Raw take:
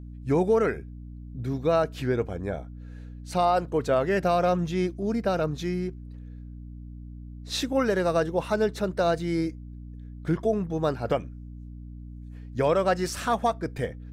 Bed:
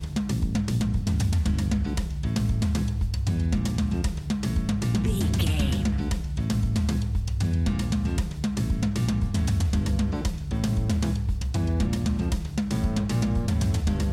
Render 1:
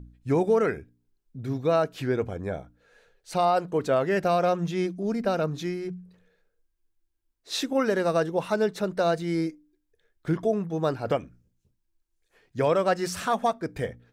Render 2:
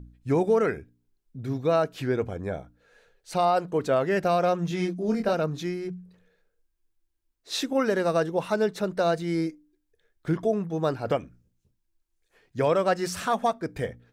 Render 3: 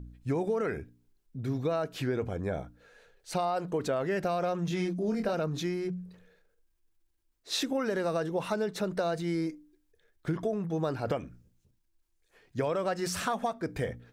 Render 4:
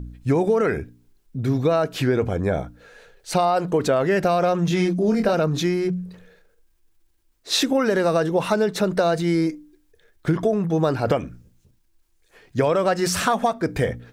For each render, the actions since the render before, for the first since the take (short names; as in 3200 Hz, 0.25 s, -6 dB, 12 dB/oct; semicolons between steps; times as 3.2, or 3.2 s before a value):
de-hum 60 Hz, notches 5
4.68–5.33 doubler 23 ms -3.5 dB
compressor, threshold -27 dBFS, peak gain reduction 9.5 dB; transient shaper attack 0 dB, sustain +4 dB
gain +10.5 dB